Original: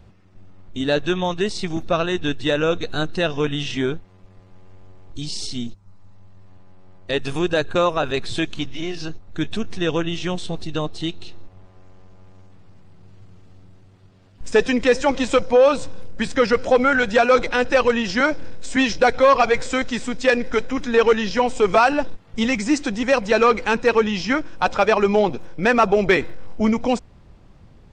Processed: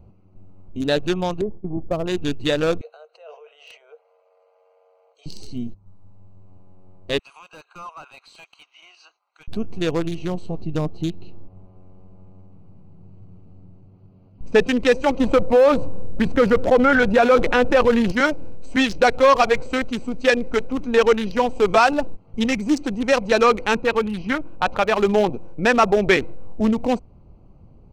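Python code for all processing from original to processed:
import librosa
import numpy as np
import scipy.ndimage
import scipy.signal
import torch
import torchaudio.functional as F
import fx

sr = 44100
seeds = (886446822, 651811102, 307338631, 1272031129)

y = fx.chain(x, sr, fx.gate_hold(open_db=-16.0, close_db=-22.0, hold_ms=71.0, range_db=-21, attack_ms=1.4, release_ms=100.0),
    fx.gaussian_blur(sigma=8.2),
    fx.notch(hz=230.0, q=5.6), at=(1.41, 2.06))
y = fx.chain(y, sr, fx.over_compress(threshold_db=-29.0, ratio=-1.0),
    fx.cheby_ripple_highpass(hz=450.0, ripple_db=6), at=(2.81, 5.26))
y = fx.chain(y, sr, fx.highpass(hz=1100.0, slope=24),
    fx.clip_hard(threshold_db=-26.0), at=(7.19, 9.48))
y = fx.chain(y, sr, fx.lowpass(hz=5200.0, slope=12),
    fx.peak_eq(hz=170.0, db=5.0, octaves=1.1), at=(10.59, 14.67))
y = fx.chain(y, sr, fx.lowpass(hz=1500.0, slope=6),
    fx.env_flatten(amount_pct=50), at=(15.2, 18.12))
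y = fx.chain(y, sr, fx.lowpass(hz=3800.0, slope=12),
    fx.dynamic_eq(hz=390.0, q=0.72, threshold_db=-24.0, ratio=4.0, max_db=-4), at=(23.77, 24.98))
y = fx.wiener(y, sr, points=25)
y = fx.high_shelf(y, sr, hz=3900.0, db=8.0)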